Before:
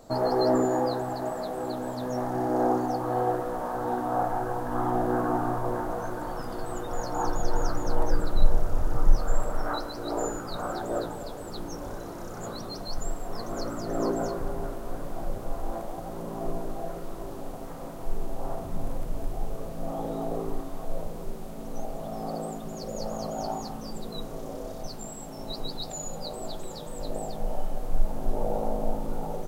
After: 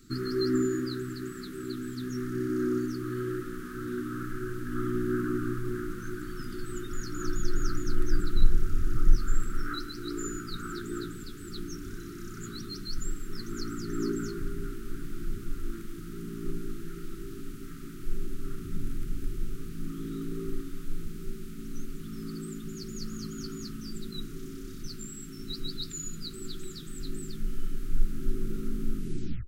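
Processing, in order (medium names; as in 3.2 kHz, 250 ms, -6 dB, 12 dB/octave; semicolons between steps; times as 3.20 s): tape stop on the ending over 0.51 s; Chebyshev band-stop 380–1300 Hz, order 4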